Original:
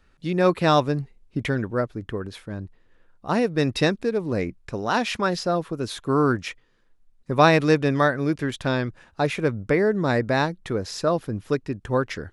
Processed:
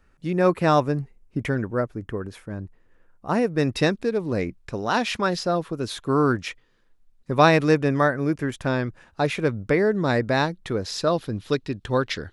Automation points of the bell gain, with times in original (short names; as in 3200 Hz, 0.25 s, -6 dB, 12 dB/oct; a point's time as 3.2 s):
bell 3800 Hz 0.86 oct
3.45 s -8 dB
4.02 s +1 dB
7.38 s +1 dB
7.95 s -8 dB
8.57 s -8 dB
9.35 s +2 dB
10.62 s +2 dB
11.42 s +11 dB